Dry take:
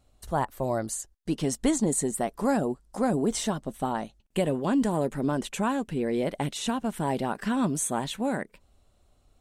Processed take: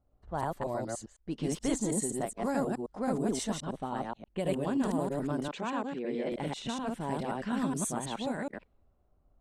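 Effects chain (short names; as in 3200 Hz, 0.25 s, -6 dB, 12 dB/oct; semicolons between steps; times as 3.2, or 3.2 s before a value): reverse delay 0.106 s, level 0 dB; low-pass opened by the level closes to 1100 Hz, open at -20 dBFS; 5.48–6.32 three-band isolator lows -21 dB, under 170 Hz, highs -23 dB, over 6600 Hz; gain -8 dB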